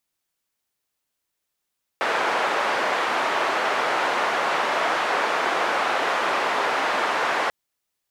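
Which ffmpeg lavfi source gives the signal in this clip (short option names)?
-f lavfi -i "anoisesrc=c=white:d=5.49:r=44100:seed=1,highpass=f=530,lowpass=f=1300,volume=-4.2dB"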